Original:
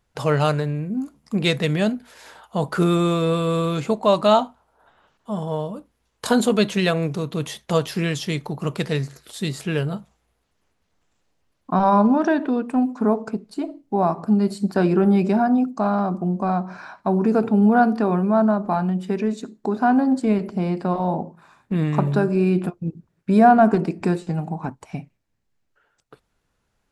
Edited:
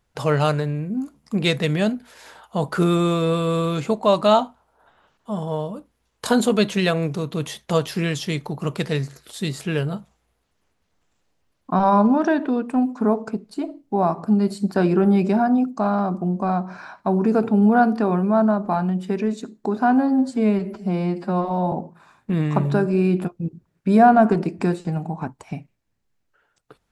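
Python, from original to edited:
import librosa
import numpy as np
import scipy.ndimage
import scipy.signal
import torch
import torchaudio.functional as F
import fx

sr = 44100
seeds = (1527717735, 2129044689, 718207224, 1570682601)

y = fx.edit(x, sr, fx.stretch_span(start_s=19.98, length_s=1.16, factor=1.5), tone=tone)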